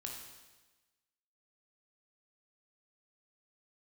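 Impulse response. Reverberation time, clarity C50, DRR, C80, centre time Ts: 1.2 s, 3.0 dB, -0.5 dB, 5.0 dB, 51 ms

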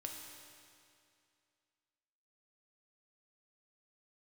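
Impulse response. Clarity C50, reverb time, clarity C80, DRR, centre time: 3.0 dB, 2.4 s, 4.0 dB, 1.0 dB, 81 ms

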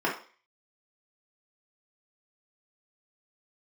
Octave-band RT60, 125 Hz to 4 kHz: 0.30 s, 0.35 s, 0.40 s, 0.40 s, 0.45 s, 0.45 s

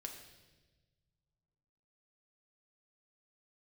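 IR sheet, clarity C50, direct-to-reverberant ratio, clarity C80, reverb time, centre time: 6.5 dB, 2.0 dB, 8.0 dB, 1.3 s, 29 ms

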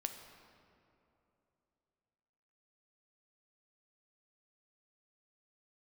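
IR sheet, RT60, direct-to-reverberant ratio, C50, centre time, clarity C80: 3.0 s, 5.5 dB, 7.0 dB, 37 ms, 8.0 dB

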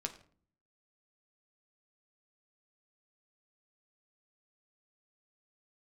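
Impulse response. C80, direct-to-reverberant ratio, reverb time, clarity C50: 16.0 dB, 3.5 dB, 0.50 s, 13.0 dB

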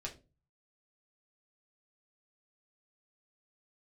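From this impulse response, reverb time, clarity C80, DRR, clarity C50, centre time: 0.30 s, 20.0 dB, -2.0 dB, 13.5 dB, 14 ms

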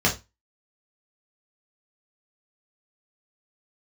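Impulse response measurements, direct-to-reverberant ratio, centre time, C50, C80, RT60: -3.0 dB, 17 ms, 11.5 dB, 20.0 dB, 0.20 s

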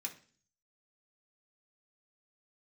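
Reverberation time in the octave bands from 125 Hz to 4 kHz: 0.75 s, 0.60 s, 0.45 s, 0.40 s, 0.45 s, 0.50 s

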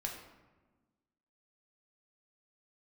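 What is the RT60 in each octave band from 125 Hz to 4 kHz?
1.6 s, 1.8 s, 1.3 s, 1.2 s, 1.0 s, 0.65 s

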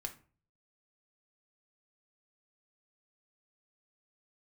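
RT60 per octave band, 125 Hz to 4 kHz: 0.70 s, 0.50 s, 0.40 s, 0.40 s, 0.35 s, 0.25 s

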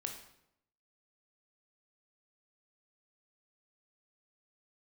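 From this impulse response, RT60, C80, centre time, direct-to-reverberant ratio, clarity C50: 0.80 s, 9.5 dB, 23 ms, 3.0 dB, 7.0 dB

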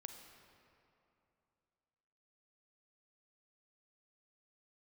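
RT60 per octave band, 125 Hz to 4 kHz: 3.0 s, 2.9 s, 2.9 s, 2.8 s, 2.3 s, 1.7 s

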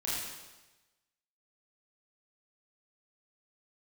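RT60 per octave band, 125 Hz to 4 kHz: 1.2 s, 1.1 s, 1.1 s, 1.1 s, 1.1 s, 1.1 s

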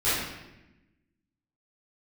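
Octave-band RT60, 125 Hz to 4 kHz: 1.4 s, 1.5 s, 1.1 s, 0.85 s, 1.0 s, 0.80 s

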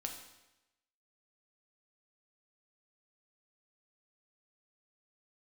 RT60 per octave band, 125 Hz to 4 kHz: 0.95 s, 0.95 s, 0.95 s, 0.95 s, 0.95 s, 0.90 s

